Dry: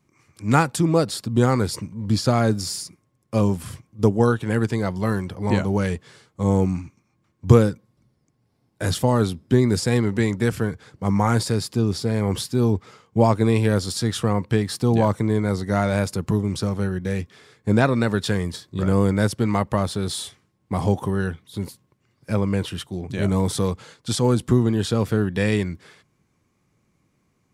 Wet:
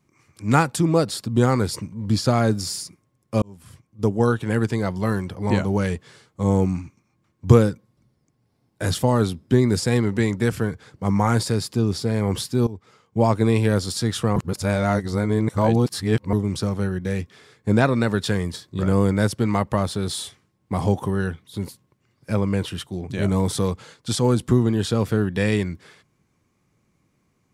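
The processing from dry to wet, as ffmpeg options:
-filter_complex "[0:a]asplit=5[a][b][c][d][e];[a]atrim=end=3.42,asetpts=PTS-STARTPTS,afade=t=out:st=3.416:d=0.004:c=hsin[f];[b]atrim=start=3.42:end=12.67,asetpts=PTS-STARTPTS,afade=t=in:d=0.94,afade=t=out:st=9.246:d=0.004:c=hsin:silence=0.133352[g];[c]atrim=start=12.67:end=14.362,asetpts=PTS-STARTPTS,afade=t=in:d=0.71:silence=0.133352[h];[d]atrim=start=14.358:end=16.332,asetpts=PTS-STARTPTS,areverse[i];[e]atrim=start=16.328[j];[f][g][h]concat=n=3:v=0:a=1[k];[k][i]acrossfade=d=0.004:c1=hsin:c2=hsin[l];[l][j]acrossfade=d=0.004:c1=hsin:c2=hsin"

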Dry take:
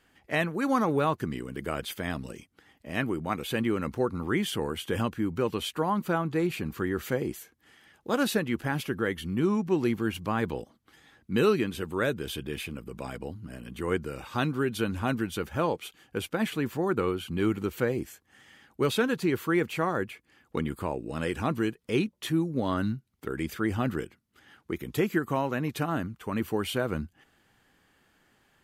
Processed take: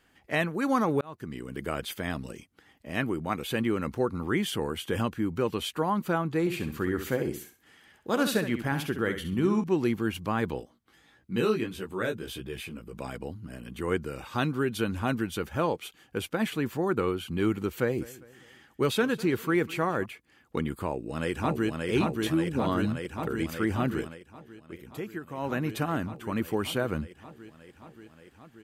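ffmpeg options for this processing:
-filter_complex "[0:a]asettb=1/sr,asplit=3[a][b][c];[a]atrim=end=6.404[d];[b]atrim=start=6.4:end=9.64,asetpts=PTS-STARTPTS,afade=t=in:d=0.004:c=qsin,afade=t=out:st=3.236:d=0.004:c=qsin,aecho=1:1:66|132|198:0.355|0.0923|0.024,atrim=end_sample=142884[e];[c]atrim=start=9.636[f];[d][e]acrossfade=d=0.004:c1=hsin:c2=qsin[g];[g][f]acrossfade=d=0.004:c1=qsin:c2=hsin,asplit=3[h][i][j];[h]afade=t=out:st=10.59:d=0.02[k];[i]flanger=delay=15.5:depth=2.8:speed=1.6,afade=t=in:st=10.59:d=0.02,afade=t=out:st=12.92:d=0.02[l];[j]afade=t=in:st=12.92:d=0.02[m];[k][l][m]amix=inputs=3:normalize=0,asettb=1/sr,asplit=3[n][o][p];[n]atrim=end=17.724[q];[o]atrim=start=17.72:end=20.06,asetpts=PTS-STARTPTS,afade=t=in:d=0.004:c=qsin,afade=t=out:st=2.336:d=0.004:c=qsin,aecho=1:1:201|402|603:0.1|0.045|0.0202,atrim=end_sample=103194[r];[p]atrim=start=20.056[s];[q][r]acrossfade=d=0.004:c1=hsin:c2=qsin[t];[t][s]acrossfade=d=0.004:c1=qsin:c2=hsin,asplit=2[u][v];[v]afade=t=in:st=20.85:d=0.01,afade=t=out:st=21.9:d=0.01,aecho=0:1:580|1160|1740|2320|2900|3480|4060|4640|5220|5800|6380|6960:0.749894|0.599915|0.479932|0.383946|0.307157|0.245725|0.19658|0.157264|0.125811|0.100649|0.0805193|0.0644154[w];[u][w]amix=inputs=2:normalize=0,asplit=4[x][y][z][aa];[x]atrim=end=1.01,asetpts=PTS-STARTPTS,afade=t=out:st=1.006:d=0.004:c=hsin[ab];[y]atrim=start=1.01:end=24.2,asetpts=PTS-STARTPTS,afade=t=in:d=0.53,afade=t=out:st=23.02:d=0.17:c=qsin:silence=0.298538[ac];[z]atrim=start=24.2:end=25.37,asetpts=PTS-STARTPTS,volume=-10.5dB[ad];[aa]atrim=start=25.37,asetpts=PTS-STARTPTS,afade=t=in:d=0.17:c=qsin:silence=0.298538[ae];[ab][ac][ad][ae]concat=n=4:v=0:a=1"

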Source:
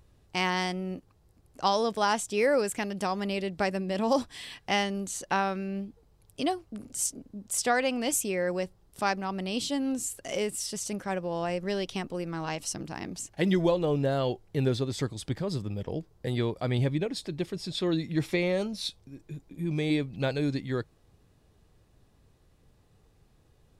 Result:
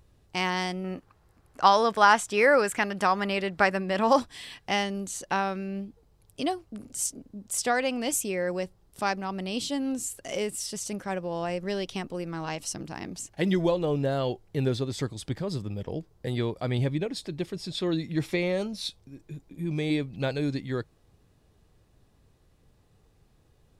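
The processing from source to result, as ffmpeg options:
-filter_complex "[0:a]asettb=1/sr,asplit=3[a][b][c];[a]atrim=end=0.844[d];[b]atrim=start=0.84:end=4.2,asetpts=PTS-STARTPTS,afade=t=in:d=0.004:c=qsin,afade=t=out:st=3.356:d=0.004:c=qsin,equalizer=f=1.4k:w=0.74:g=11[e];[c]atrim=start=4.196[f];[d][e]acrossfade=d=0.004:c1=hsin:c2=qsin[g];[g][f]acrossfade=d=0.004:c1=qsin:c2=hsin"

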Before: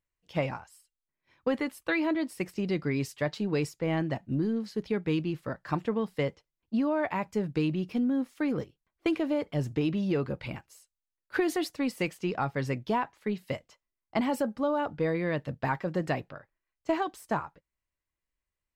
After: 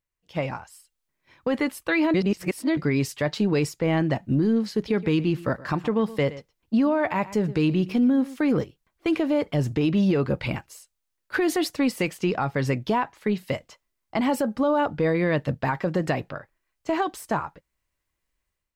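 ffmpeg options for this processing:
-filter_complex "[0:a]asettb=1/sr,asplit=3[a][b][c];[a]atrim=end=4.764[d];[b]atrim=start=4.76:end=8.5,asetpts=PTS-STARTPTS,afade=t=in:d=0.004:c=qsin,afade=t=out:st=3.736:d=0.004:c=qsin,aecho=1:1:119:0.106,atrim=end_sample=164934[e];[c]atrim=start=8.496[f];[d][e]acrossfade=d=0.004:c1=hsin:c2=qsin[g];[g][f]acrossfade=d=0.004:c1=qsin:c2=hsin,asplit=3[h][i][j];[h]atrim=end=2.142[k];[i]atrim=start=2.138:end=2.772,asetpts=PTS-STARTPTS,areverse[l];[j]atrim=start=2.768[m];[k][l]acrossfade=d=0.004:c1=hsin:c2=hsin[n];[n][m]acrossfade=d=0.004:c1=hsin:c2=hsin,dynaudnorm=f=420:g=3:m=9.5dB,alimiter=limit=-14.5dB:level=0:latency=1:release=131"

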